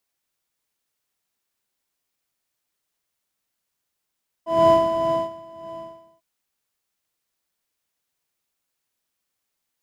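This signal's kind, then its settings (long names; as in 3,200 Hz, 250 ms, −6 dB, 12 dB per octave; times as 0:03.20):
subtractive patch with tremolo E5, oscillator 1 triangle, oscillator 2 square, interval +7 semitones, detune 27 cents, oscillator 2 level −5 dB, sub −22 dB, noise −8.5 dB, filter bandpass, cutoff 160 Hz, Q 1.4, filter envelope 1 octave, filter decay 0.09 s, filter sustain 0%, attack 265 ms, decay 0.57 s, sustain −22.5 dB, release 0.53 s, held 1.22 s, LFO 1.7 Hz, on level 9 dB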